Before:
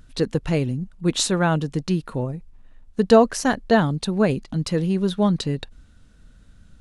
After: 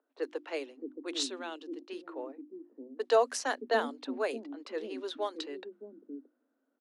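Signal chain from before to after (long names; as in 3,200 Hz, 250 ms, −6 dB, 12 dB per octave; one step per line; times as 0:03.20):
0:01.23–0:01.90: flat-topped bell 980 Hz −10 dB 2.6 octaves
low-pass that shuts in the quiet parts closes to 650 Hz, open at −13.5 dBFS
Butterworth high-pass 250 Hz 96 dB per octave
high-shelf EQ 4,700 Hz +5.5 dB
mains-hum notches 50/100/150/200/250/300/350 Hz
multiband delay without the direct sound highs, lows 620 ms, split 330 Hz
level −9 dB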